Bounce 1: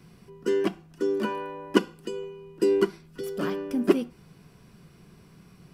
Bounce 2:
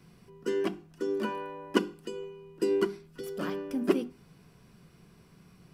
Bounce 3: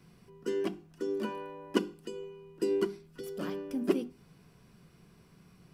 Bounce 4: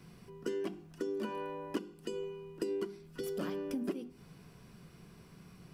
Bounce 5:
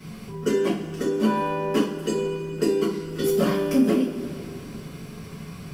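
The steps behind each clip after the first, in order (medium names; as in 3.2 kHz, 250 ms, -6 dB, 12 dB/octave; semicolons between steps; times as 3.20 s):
hum notches 50/100/150/200/250/300/350/400 Hz; trim -3.5 dB
dynamic bell 1.4 kHz, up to -4 dB, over -48 dBFS, Q 0.81; trim -2 dB
compression 8:1, threshold -37 dBFS, peak gain reduction 16.5 dB; trim +3.5 dB
two-slope reverb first 0.34 s, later 2.8 s, from -17 dB, DRR -10 dB; trim +6.5 dB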